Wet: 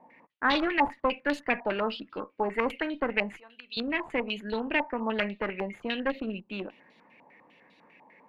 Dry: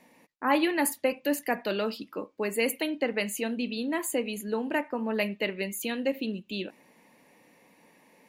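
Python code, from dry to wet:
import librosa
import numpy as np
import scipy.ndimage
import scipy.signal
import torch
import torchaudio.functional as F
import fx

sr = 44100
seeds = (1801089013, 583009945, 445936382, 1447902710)

y = fx.differentiator(x, sr, at=(3.33, 3.77))
y = fx.cheby_harmonics(y, sr, harmonics=(4, 5), levels_db=(-8, -14), full_scale_db=-11.5)
y = fx.filter_held_lowpass(y, sr, hz=10.0, low_hz=880.0, high_hz=3800.0)
y = F.gain(torch.from_numpy(y), -8.0).numpy()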